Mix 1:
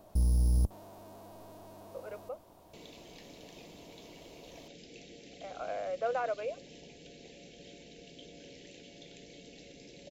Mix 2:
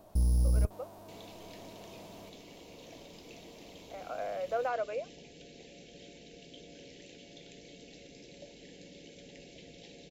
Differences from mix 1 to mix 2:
speech: entry -1.50 s; second sound: entry -1.65 s

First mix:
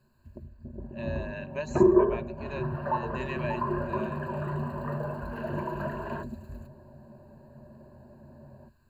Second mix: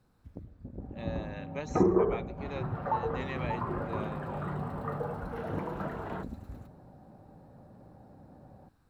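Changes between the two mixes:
first sound: send +6.5 dB; master: remove ripple EQ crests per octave 1.4, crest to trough 16 dB

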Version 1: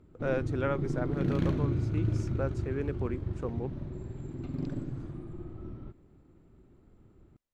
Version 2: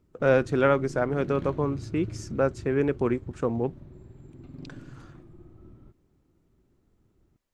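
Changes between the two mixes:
speech +10.0 dB; background -8.0 dB

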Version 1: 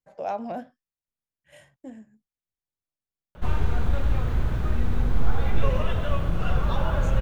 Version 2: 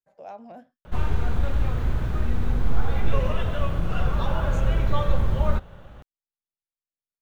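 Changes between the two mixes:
speech -10.5 dB; background: entry -2.50 s

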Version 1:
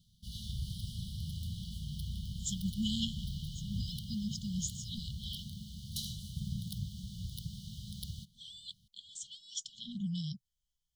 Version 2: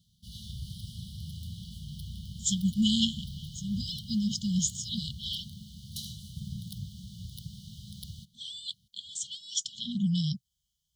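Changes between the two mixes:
speech +9.0 dB; master: add HPF 58 Hz

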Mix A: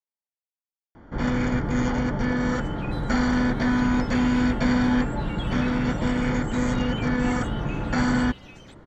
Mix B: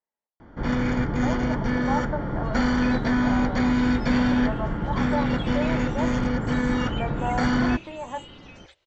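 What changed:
speech +11.0 dB; first sound: entry -0.55 s; master: add LPF 6600 Hz 24 dB/oct

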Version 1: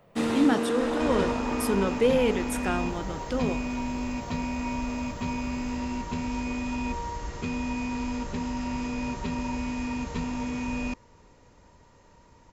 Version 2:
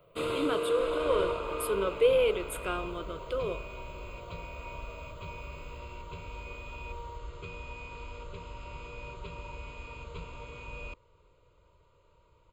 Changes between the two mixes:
speech: add HPF 220 Hz; second sound -5.5 dB; master: add fixed phaser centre 1200 Hz, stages 8

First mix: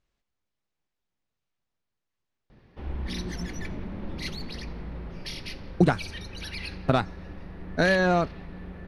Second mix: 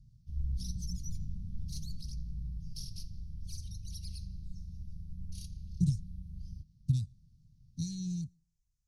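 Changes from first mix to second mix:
background: entry -2.50 s; master: add elliptic band-stop 140–5900 Hz, stop band 60 dB

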